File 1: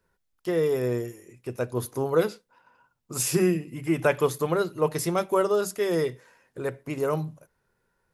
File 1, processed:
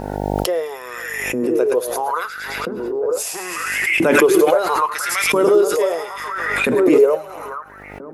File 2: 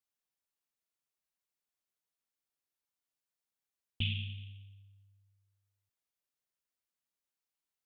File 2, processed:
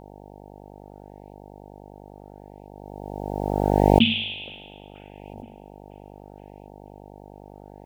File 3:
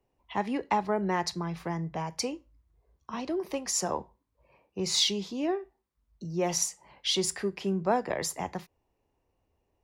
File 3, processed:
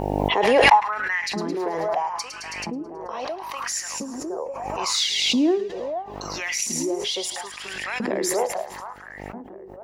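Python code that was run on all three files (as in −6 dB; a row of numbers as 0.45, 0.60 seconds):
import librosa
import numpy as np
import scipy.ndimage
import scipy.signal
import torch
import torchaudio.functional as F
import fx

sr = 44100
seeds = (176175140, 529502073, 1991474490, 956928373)

y = fx.echo_split(x, sr, split_hz=1500.0, low_ms=475, high_ms=108, feedback_pct=52, wet_db=-8)
y = fx.filter_lfo_highpass(y, sr, shape='saw_up', hz=0.75, low_hz=220.0, high_hz=2600.0, q=5.2)
y = fx.dmg_buzz(y, sr, base_hz=50.0, harmonics=18, level_db=-61.0, tilt_db=-1, odd_only=False)
y = fx.pre_swell(y, sr, db_per_s=24.0)
y = librosa.util.normalize(y) * 10.0 ** (-1.5 / 20.0)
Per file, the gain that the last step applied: +1.0, +13.5, 0.0 decibels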